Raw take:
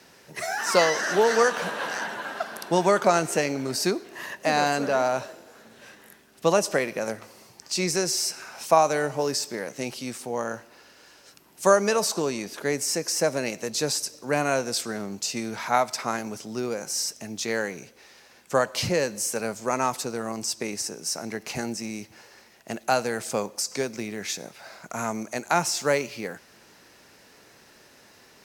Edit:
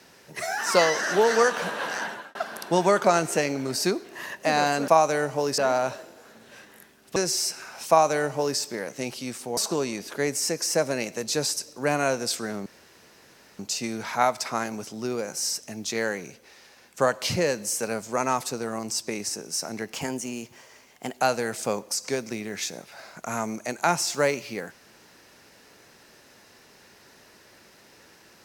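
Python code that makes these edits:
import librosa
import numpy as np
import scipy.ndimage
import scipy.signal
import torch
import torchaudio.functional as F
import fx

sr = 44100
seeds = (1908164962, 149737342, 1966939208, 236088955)

y = fx.edit(x, sr, fx.fade_out_span(start_s=2.07, length_s=0.28),
    fx.cut(start_s=6.46, length_s=1.5),
    fx.duplicate(start_s=8.69, length_s=0.7, to_s=4.88),
    fx.cut(start_s=10.37, length_s=1.66),
    fx.insert_room_tone(at_s=15.12, length_s=0.93),
    fx.speed_span(start_s=21.46, length_s=1.42, speed=1.11), tone=tone)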